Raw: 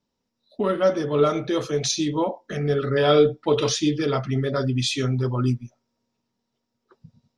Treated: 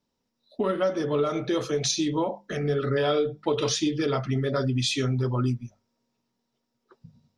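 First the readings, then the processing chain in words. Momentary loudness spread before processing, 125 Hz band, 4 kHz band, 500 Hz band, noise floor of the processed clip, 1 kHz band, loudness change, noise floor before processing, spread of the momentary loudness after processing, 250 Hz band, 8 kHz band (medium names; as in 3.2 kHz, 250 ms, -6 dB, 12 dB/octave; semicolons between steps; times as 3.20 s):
7 LU, -3.0 dB, -2.5 dB, -4.5 dB, -79 dBFS, -4.0 dB, -3.5 dB, -79 dBFS, 5 LU, -3.0 dB, -1.5 dB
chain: compression 6:1, threshold -21 dBFS, peak gain reduction 9.5 dB; hum notches 50/100/150/200 Hz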